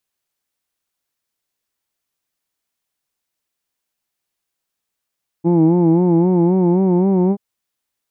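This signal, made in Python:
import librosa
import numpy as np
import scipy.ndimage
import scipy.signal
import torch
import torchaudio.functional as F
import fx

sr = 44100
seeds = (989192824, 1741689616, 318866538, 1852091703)

y = fx.vowel(sr, seeds[0], length_s=1.93, word="who'd", hz=165.0, glide_st=2.5, vibrato_hz=3.8, vibrato_st=0.9)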